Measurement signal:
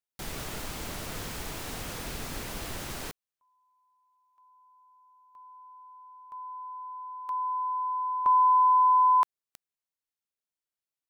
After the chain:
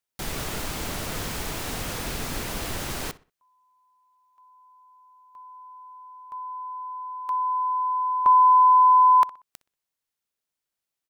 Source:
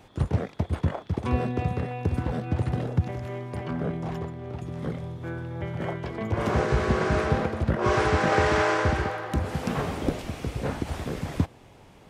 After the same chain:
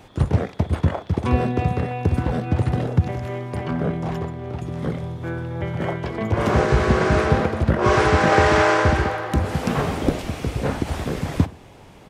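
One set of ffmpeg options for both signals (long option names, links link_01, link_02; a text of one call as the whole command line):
ffmpeg -i in.wav -filter_complex "[0:a]asplit=2[link_01][link_02];[link_02]adelay=62,lowpass=frequency=3700:poles=1,volume=-18dB,asplit=2[link_03][link_04];[link_04]adelay=62,lowpass=frequency=3700:poles=1,volume=0.33,asplit=2[link_05][link_06];[link_06]adelay=62,lowpass=frequency=3700:poles=1,volume=0.33[link_07];[link_01][link_03][link_05][link_07]amix=inputs=4:normalize=0,volume=6dB" out.wav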